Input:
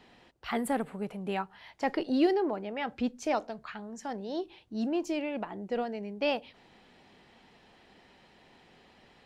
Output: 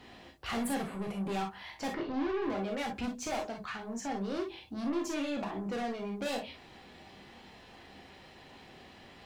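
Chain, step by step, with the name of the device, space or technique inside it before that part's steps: open-reel tape (saturation -37.5 dBFS, distortion -4 dB; peaking EQ 88 Hz +5 dB 0.9 oct; white noise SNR 46 dB); 1.93–2.42 s: distance through air 240 m; gated-style reverb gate 80 ms flat, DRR 0.5 dB; trim +3 dB

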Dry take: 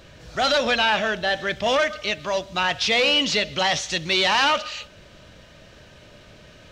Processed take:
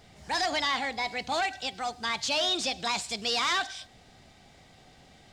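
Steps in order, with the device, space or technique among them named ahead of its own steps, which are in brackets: nightcore (tape speed +26%); trim -8 dB

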